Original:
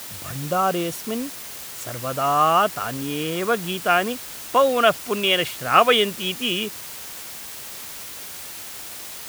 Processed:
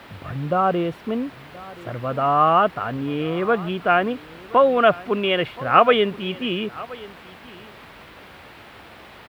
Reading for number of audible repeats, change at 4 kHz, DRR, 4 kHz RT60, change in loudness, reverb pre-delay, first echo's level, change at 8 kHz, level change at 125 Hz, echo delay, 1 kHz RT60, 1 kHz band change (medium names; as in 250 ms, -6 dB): 1, -6.0 dB, no reverb, no reverb, +1.0 dB, no reverb, -20.0 dB, under -25 dB, +3.0 dB, 1025 ms, no reverb, +1.0 dB